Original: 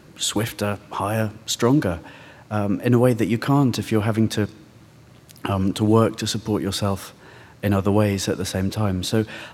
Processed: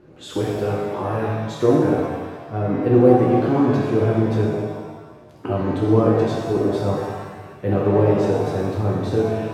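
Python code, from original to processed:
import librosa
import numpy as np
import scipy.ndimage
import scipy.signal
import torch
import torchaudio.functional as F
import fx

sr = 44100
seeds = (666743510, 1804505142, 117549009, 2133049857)

y = fx.lowpass(x, sr, hz=1000.0, slope=6)
y = fx.peak_eq(y, sr, hz=400.0, db=9.0, octaves=0.59)
y = fx.rev_shimmer(y, sr, seeds[0], rt60_s=1.3, semitones=7, shimmer_db=-8, drr_db=-4.0)
y = y * 10.0 ** (-5.5 / 20.0)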